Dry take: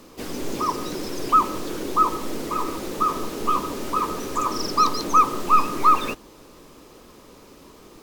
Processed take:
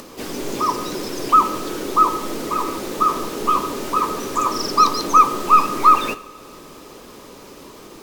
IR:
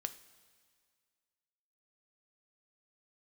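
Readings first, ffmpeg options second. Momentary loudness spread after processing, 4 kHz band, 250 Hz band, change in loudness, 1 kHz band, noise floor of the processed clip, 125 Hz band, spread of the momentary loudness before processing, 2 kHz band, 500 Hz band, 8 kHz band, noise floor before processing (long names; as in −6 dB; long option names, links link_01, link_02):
13 LU, +4.0 dB, +2.5 dB, +4.5 dB, +4.5 dB, −41 dBFS, +1.0 dB, 12 LU, +4.5 dB, +3.5 dB, +4.0 dB, −48 dBFS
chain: -filter_complex "[0:a]acompressor=mode=upward:threshold=-37dB:ratio=2.5,asplit=2[link_01][link_02];[1:a]atrim=start_sample=2205,lowshelf=frequency=120:gain=-10.5[link_03];[link_02][link_03]afir=irnorm=-1:irlink=0,volume=10dB[link_04];[link_01][link_04]amix=inputs=2:normalize=0,volume=-7dB"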